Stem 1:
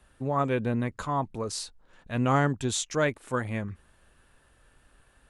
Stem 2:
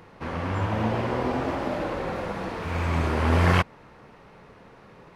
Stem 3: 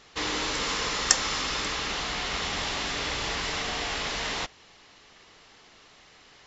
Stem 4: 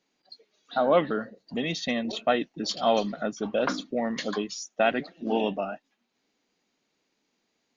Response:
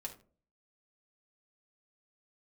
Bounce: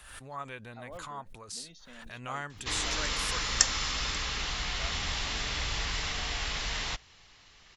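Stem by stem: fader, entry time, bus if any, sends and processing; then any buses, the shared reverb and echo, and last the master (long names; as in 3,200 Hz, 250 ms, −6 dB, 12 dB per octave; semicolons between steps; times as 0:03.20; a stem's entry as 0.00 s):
−5.5 dB, 0.00 s, no send, low-shelf EQ 490 Hz −8.5 dB; background raised ahead of every attack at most 53 dB per second
muted
−2.0 dB, 2.50 s, no send, low-shelf EQ 290 Hz +9.5 dB
−14.0 dB, 0.00 s, no send, parametric band 2,400 Hz −11 dB 2.4 octaves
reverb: not used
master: parametric band 310 Hz −11.5 dB 2.9 octaves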